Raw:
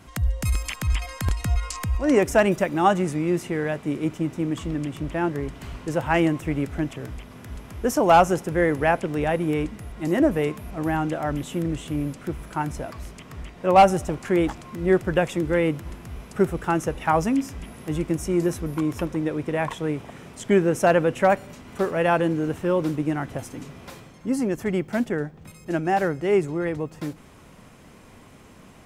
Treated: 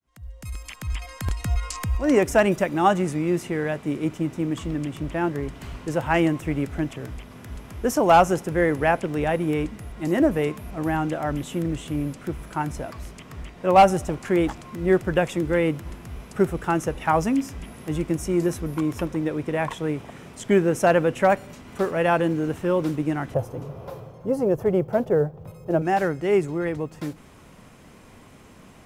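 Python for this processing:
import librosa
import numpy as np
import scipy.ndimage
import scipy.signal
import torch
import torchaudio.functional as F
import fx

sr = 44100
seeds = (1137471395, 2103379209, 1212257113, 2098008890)

y = fx.fade_in_head(x, sr, length_s=1.73)
y = fx.graphic_eq_10(y, sr, hz=(125, 250, 500, 1000, 2000, 4000, 8000), db=(10, -9, 12, 3, -9, -5, -12), at=(23.34, 25.82))
y = fx.quant_float(y, sr, bits=6)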